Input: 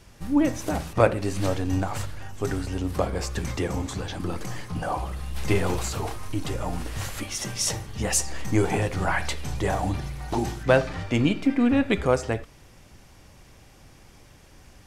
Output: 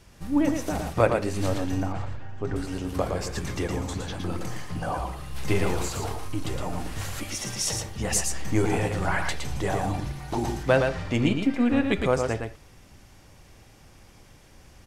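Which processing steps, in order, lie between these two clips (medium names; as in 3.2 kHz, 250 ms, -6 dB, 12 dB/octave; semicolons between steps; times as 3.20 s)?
1.81–2.56 s: tape spacing loss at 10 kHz 25 dB; on a send: delay 114 ms -5 dB; on the sum: trim -2 dB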